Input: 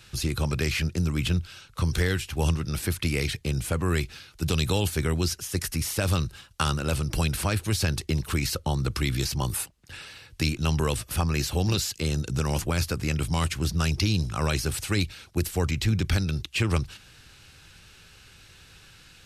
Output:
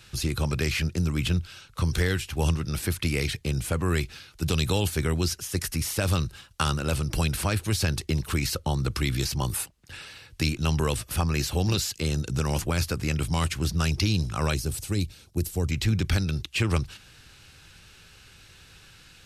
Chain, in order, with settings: 14.54–15.71 bell 1700 Hz -11.5 dB 2.6 oct

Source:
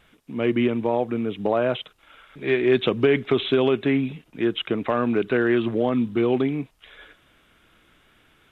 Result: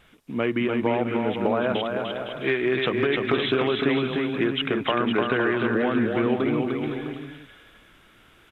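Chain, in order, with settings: dynamic EQ 1400 Hz, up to +7 dB, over -40 dBFS, Q 0.85; compressor, threshold -22 dBFS, peak gain reduction 9.5 dB; on a send: bouncing-ball echo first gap 0.3 s, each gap 0.7×, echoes 5; on the sum: gain +1.5 dB

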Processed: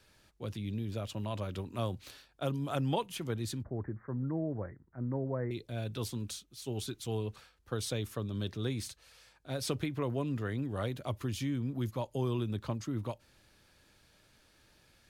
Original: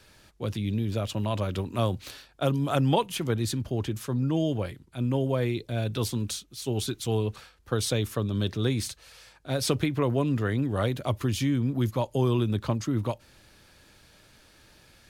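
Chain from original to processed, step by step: 3.63–5.51 steep low-pass 2000 Hz 96 dB/oct; gain -8.5 dB

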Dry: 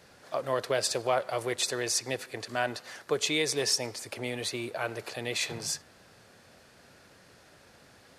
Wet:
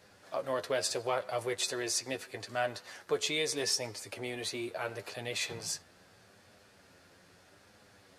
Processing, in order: flange 0.77 Hz, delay 9.6 ms, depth 2 ms, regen +32%

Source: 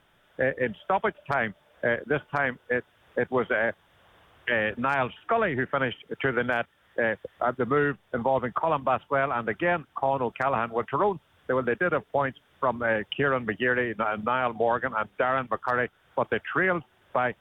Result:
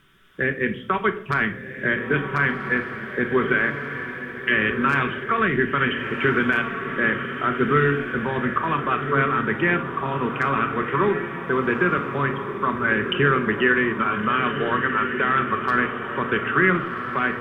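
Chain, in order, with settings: band shelf 680 Hz -14.5 dB 1 oct; on a send: diffused feedback echo 1.449 s, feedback 40%, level -7 dB; on the sum: shoebox room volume 840 m³, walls furnished, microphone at 1.1 m; gain +5.5 dB

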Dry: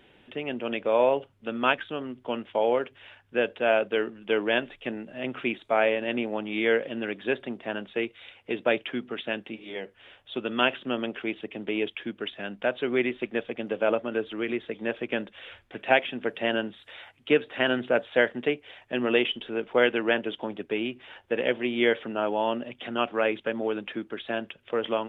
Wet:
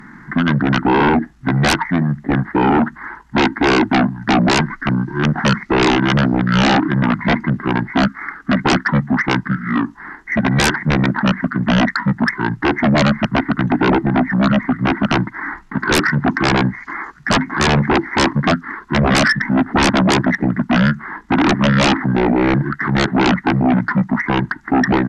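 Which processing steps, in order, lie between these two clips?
fixed phaser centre 370 Hz, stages 4; pitch shift -9.5 st; sine folder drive 18 dB, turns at -9.5 dBFS

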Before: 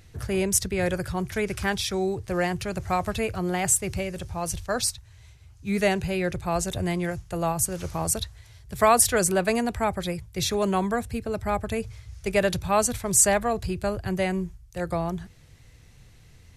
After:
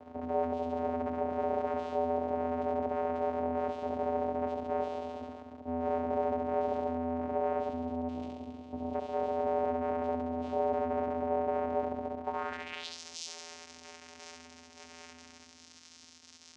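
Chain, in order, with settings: spectral delete 7.59–8.94, 280–3200 Hz; reverse; compressor 6:1, threshold -34 dBFS, peak gain reduction 18.5 dB; reverse; hard clip -33.5 dBFS, distortion -12 dB; on a send: flutter echo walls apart 11.7 m, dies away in 1.4 s; on the sum: chorus 0.38 Hz, delay 17.5 ms, depth 7.5 ms; fuzz box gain 49 dB, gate -56 dBFS; vocoder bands 4, square 83.3 Hz; band-pass sweep 650 Hz -> 5700 Hz, 12.19–13; gain -6 dB

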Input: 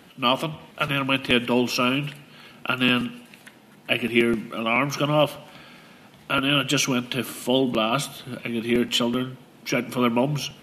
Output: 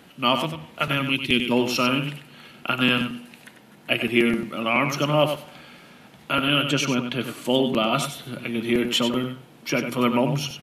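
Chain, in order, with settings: 1.02–1.52 spectral gain 430–1900 Hz -13 dB; 6.62–7.45 high shelf 5500 Hz -10 dB; echo 95 ms -8 dB

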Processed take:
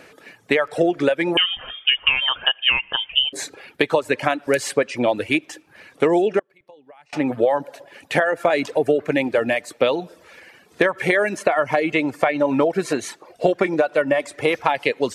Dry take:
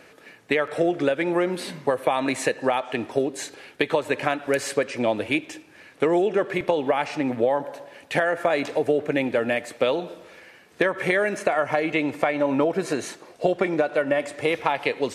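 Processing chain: 1.37–3.33 inverted band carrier 3400 Hz; 6.39–7.13 flipped gate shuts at -23 dBFS, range -28 dB; reverb removal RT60 0.6 s; gain +4 dB

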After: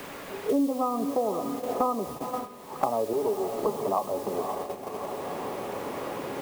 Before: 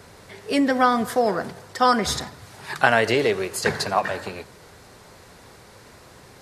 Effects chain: 3.13–3.75 minimum comb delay 4.8 ms; HPF 210 Hz 6 dB/oct; on a send: diffused feedback echo 0.52 s, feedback 42%, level -14 dB; on the sum: AGC gain up to 10.5 dB; brick-wall FIR low-pass 1300 Hz; bell 350 Hz +6 dB 1.9 oct; requantised 6-bit, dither triangular; resonator 280 Hz, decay 0.16 s, harmonics all, mix 60%; gate -32 dBFS, range -16 dB; three-band squash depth 100%; gain -5.5 dB

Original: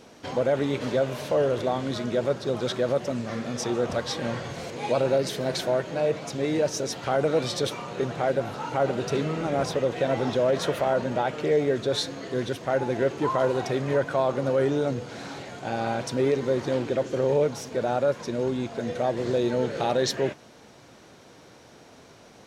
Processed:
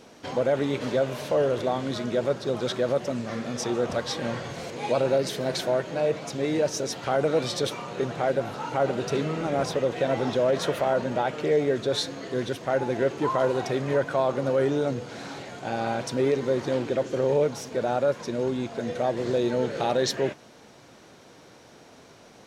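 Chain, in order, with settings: bell 74 Hz -3 dB 1.4 oct

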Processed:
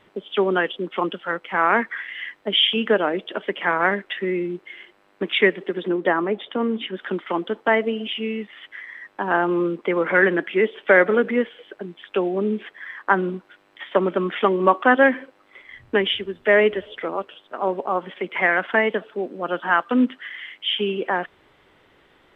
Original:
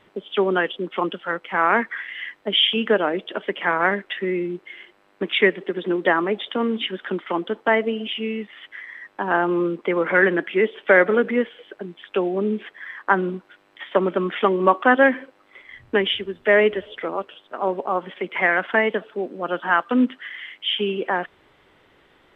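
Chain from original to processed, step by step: 5.88–6.97 high shelf 2100 Hz -8 dB

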